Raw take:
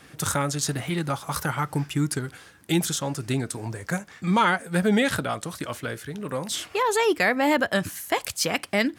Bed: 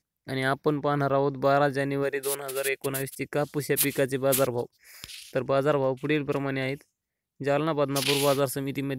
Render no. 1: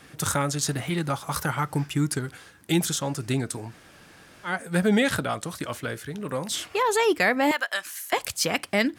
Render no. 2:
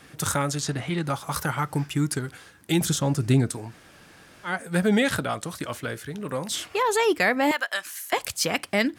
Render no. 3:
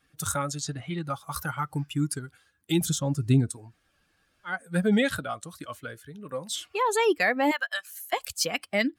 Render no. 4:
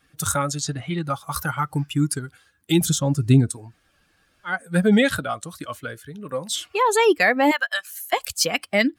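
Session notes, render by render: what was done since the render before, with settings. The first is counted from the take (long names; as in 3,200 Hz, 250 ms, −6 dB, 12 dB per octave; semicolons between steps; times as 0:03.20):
0:03.67–0:04.51: fill with room tone, crossfade 0.16 s; 0:07.51–0:08.13: high-pass filter 1,100 Hz
0:00.61–0:01.07: high-frequency loss of the air 53 metres; 0:02.81–0:03.52: low-shelf EQ 350 Hz +9 dB
spectral dynamics exaggerated over time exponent 1.5
level +6 dB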